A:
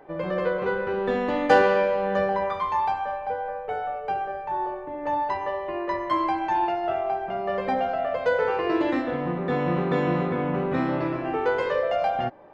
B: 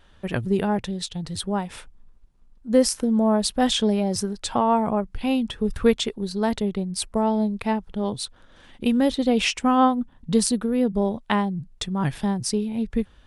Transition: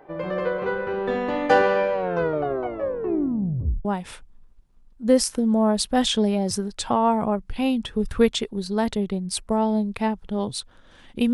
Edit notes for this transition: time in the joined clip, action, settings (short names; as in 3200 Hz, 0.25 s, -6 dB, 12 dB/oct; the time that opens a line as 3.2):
A
1.93 tape stop 1.92 s
3.85 switch to B from 1.5 s